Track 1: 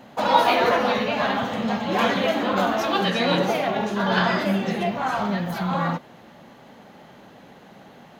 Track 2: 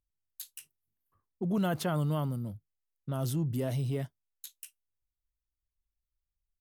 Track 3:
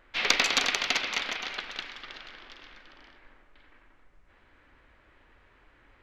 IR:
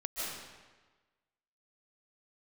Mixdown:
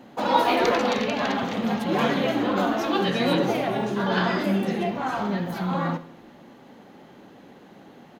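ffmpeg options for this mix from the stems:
-filter_complex "[0:a]equalizer=f=320:w=1.4:g=7.5,bandreject=f=630:w=20,volume=0.631,asplit=2[s0][s1];[s1]volume=0.15[s2];[1:a]volume=0.447[s3];[2:a]adelay=350,volume=0.299[s4];[s2]aecho=0:1:66|132|198|264|330|396|462:1|0.51|0.26|0.133|0.0677|0.0345|0.0176[s5];[s0][s3][s4][s5]amix=inputs=4:normalize=0"

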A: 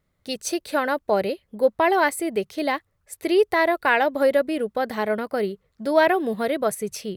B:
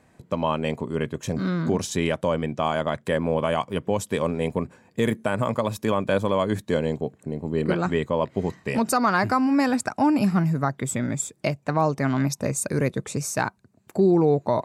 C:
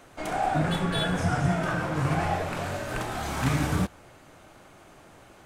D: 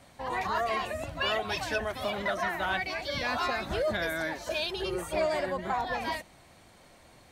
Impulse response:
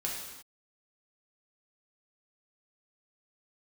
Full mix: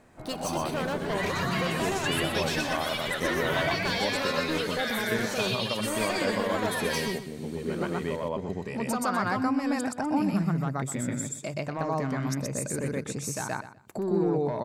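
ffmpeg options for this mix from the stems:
-filter_complex "[0:a]acompressor=threshold=0.1:ratio=6,asoftclip=type=hard:threshold=0.0447,volume=0.944,asplit=4[s0][s1][s2][s3];[s1]volume=0.106[s4];[s2]volume=0.266[s5];[1:a]bandreject=f=50:t=h:w=6,bandreject=f=100:t=h:w=6,bandreject=f=150:t=h:w=6,volume=1,asplit=2[s6][s7];[s7]volume=0.376[s8];[2:a]lowpass=1300,volume=0.335,asplit=2[s9][s10];[s10]volume=0.708[s11];[3:a]highpass=1000,tiltshelf=f=1300:g=-6.5,acompressor=threshold=0.0282:ratio=6,adelay=850,volume=1.19,asplit=2[s12][s13];[s13]volume=0.708[s14];[s3]apad=whole_len=645810[s15];[s6][s15]sidechaincompress=threshold=0.01:ratio=8:attack=16:release=1390[s16];[s0][s16][s9]amix=inputs=3:normalize=0,asoftclip=type=tanh:threshold=0.188,alimiter=level_in=1.12:limit=0.0631:level=0:latency=1:release=294,volume=0.891,volume=1[s17];[4:a]atrim=start_sample=2205[s18];[s4][s18]afir=irnorm=-1:irlink=0[s19];[s5][s8][s11][s14]amix=inputs=4:normalize=0,aecho=0:1:124|248|372:1|0.2|0.04[s20];[s12][s17][s19][s20]amix=inputs=4:normalize=0"

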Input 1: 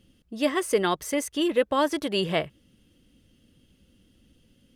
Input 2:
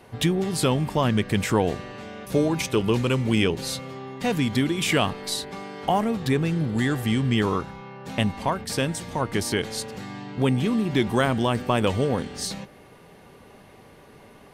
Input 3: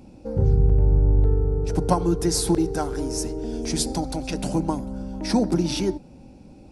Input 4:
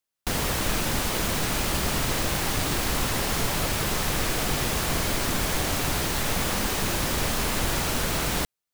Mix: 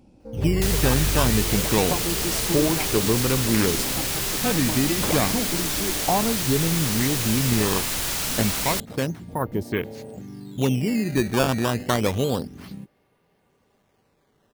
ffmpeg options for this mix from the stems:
-filter_complex "[0:a]volume=0.178[s0];[1:a]afwtdn=0.0355,acrusher=samples=12:mix=1:aa=0.000001:lfo=1:lforange=19.2:lforate=0.29,adelay=200,volume=1[s1];[2:a]volume=0.422[s2];[3:a]highshelf=f=2100:g=11.5,adelay=350,volume=0.447[s3];[s0][s1][s2][s3]amix=inputs=4:normalize=0"

